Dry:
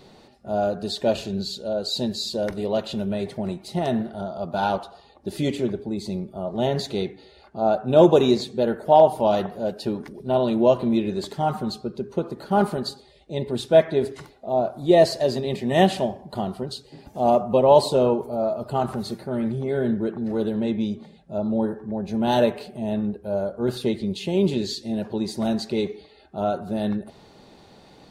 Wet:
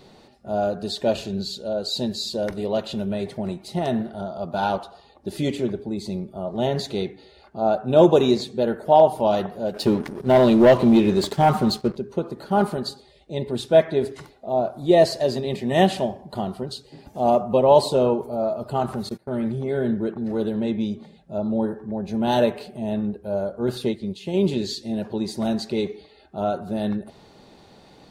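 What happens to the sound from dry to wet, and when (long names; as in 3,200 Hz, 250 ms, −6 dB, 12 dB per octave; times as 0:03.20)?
0:09.74–0:11.97: leveller curve on the samples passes 2
0:19.09–0:20.16: noise gate −35 dBFS, range −21 dB
0:23.86–0:24.34: expander for the loud parts, over −34 dBFS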